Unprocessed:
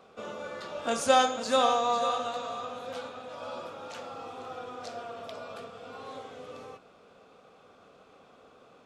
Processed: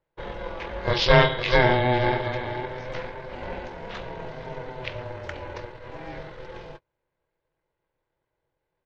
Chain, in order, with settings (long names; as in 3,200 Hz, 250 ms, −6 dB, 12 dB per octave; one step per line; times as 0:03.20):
pitch vibrato 8.6 Hz 6.7 cents
high-shelf EQ 2,100 Hz +8 dB
noise gate −44 dBFS, range −29 dB
pitch shifter −11.5 semitones
ring modulation 250 Hz
level +7.5 dB